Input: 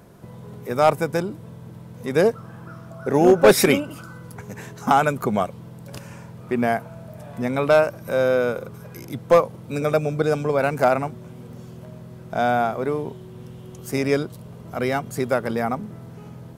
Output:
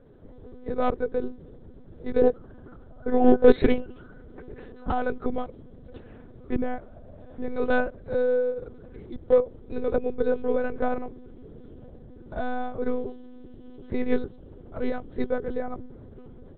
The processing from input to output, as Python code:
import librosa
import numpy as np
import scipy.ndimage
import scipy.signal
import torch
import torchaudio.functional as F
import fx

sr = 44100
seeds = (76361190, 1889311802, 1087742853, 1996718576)

y = fx.graphic_eq_15(x, sr, hz=(400, 1000, 2500), db=(9, -8, -10))
y = fx.lpc_monotone(y, sr, seeds[0], pitch_hz=250.0, order=10)
y = y * librosa.db_to_amplitude(-7.0)